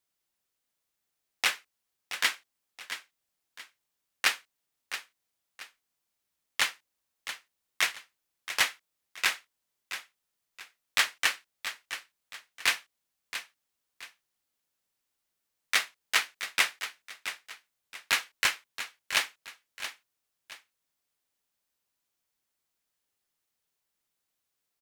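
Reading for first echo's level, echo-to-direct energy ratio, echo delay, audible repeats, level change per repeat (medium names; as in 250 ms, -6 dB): -11.0 dB, -10.5 dB, 675 ms, 2, -9.5 dB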